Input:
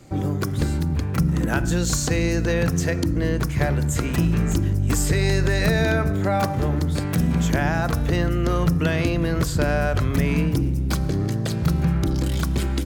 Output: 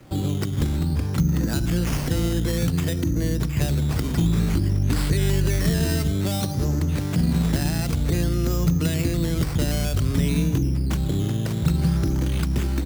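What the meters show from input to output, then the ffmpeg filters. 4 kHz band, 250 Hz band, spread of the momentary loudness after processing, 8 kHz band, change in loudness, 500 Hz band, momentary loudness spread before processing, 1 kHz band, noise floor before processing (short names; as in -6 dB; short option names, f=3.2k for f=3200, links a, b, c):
0.0 dB, -1.0 dB, 3 LU, -3.0 dB, -1.0 dB, -5.0 dB, 3 LU, -8.0 dB, -25 dBFS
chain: -filter_complex "[0:a]acrusher=samples=10:mix=1:aa=0.000001:lfo=1:lforange=6:lforate=0.55,acrossover=split=370|3000[a][b][c];[b]acompressor=threshold=-36dB:ratio=5[d];[a][d][c]amix=inputs=3:normalize=0"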